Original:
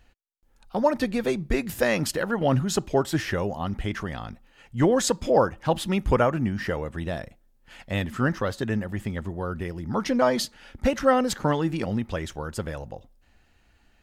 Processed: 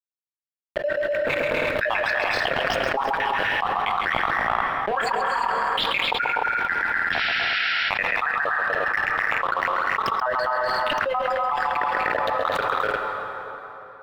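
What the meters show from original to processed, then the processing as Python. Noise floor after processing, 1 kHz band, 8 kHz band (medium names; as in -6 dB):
under -85 dBFS, +8.0 dB, under -10 dB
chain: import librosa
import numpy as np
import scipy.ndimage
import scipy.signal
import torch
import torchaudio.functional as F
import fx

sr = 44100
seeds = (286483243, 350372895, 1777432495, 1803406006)

y = fx.spec_dropout(x, sr, seeds[0], share_pct=73)
y = scipy.signal.sosfilt(scipy.signal.butter(4, 810.0, 'highpass', fs=sr, output='sos'), y)
y = fx.high_shelf(y, sr, hz=7700.0, db=-10.0)
y = fx.chorus_voices(y, sr, voices=6, hz=0.42, base_ms=26, depth_ms=3.1, mix_pct=25)
y = np.where(np.abs(y) >= 10.0 ** (-40.5 / 20.0), y, 0.0)
y = fx.spec_paint(y, sr, seeds[1], shape='noise', start_s=7.12, length_s=0.47, low_hz=1300.0, high_hz=5700.0, level_db=-44.0)
y = fx.air_absorb(y, sr, metres=500.0)
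y = fx.echo_multitap(y, sr, ms=(134, 246, 265, 298, 350), db=(-9.5, -9.5, -13.0, -12.5, -12.0))
y = fx.rev_plate(y, sr, seeds[2], rt60_s=3.3, hf_ratio=0.7, predelay_ms=0, drr_db=14.0)
y = fx.env_flatten(y, sr, amount_pct=100)
y = y * 10.0 ** (5.0 / 20.0)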